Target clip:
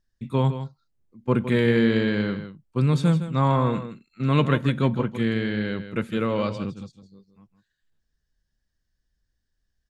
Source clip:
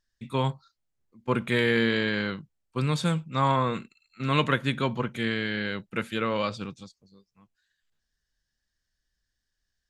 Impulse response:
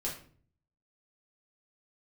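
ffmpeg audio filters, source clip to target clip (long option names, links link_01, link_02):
-af "tiltshelf=frequency=670:gain=5.5,aecho=1:1:160:0.282,volume=1.5dB"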